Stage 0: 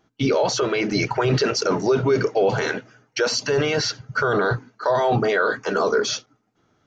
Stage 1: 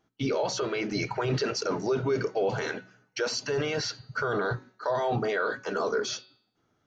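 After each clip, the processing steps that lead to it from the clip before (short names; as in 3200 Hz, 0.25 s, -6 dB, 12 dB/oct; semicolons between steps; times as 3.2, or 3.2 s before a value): de-hum 186.5 Hz, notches 26; gain -8 dB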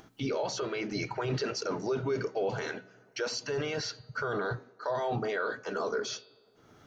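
band-limited delay 0.105 s, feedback 51%, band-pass 530 Hz, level -21.5 dB; upward compressor, threshold -36 dBFS; gain -4 dB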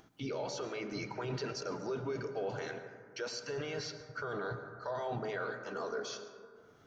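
plate-style reverb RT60 2 s, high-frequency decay 0.25×, pre-delay 95 ms, DRR 8.5 dB; gain -6.5 dB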